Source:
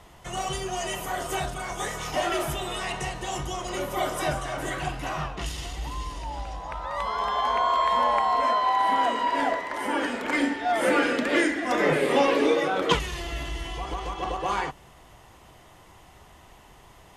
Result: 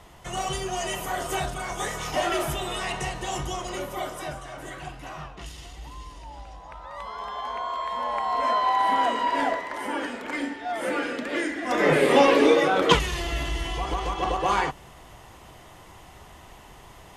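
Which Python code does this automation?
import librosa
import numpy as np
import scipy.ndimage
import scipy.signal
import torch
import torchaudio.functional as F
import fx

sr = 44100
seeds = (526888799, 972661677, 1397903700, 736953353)

y = fx.gain(x, sr, db=fx.line((3.53, 1.0), (4.29, -7.5), (7.97, -7.5), (8.56, 0.5), (9.42, 0.5), (10.38, -5.5), (11.41, -5.5), (11.99, 4.0)))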